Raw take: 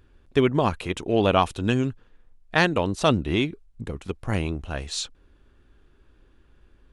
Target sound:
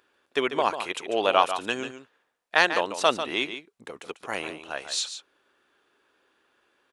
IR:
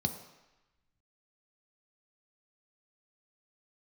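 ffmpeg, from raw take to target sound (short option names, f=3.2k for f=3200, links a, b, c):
-filter_complex "[0:a]highpass=580,asplit=2[a][b];[b]aecho=0:1:144:0.316[c];[a][c]amix=inputs=2:normalize=0,volume=1.5dB"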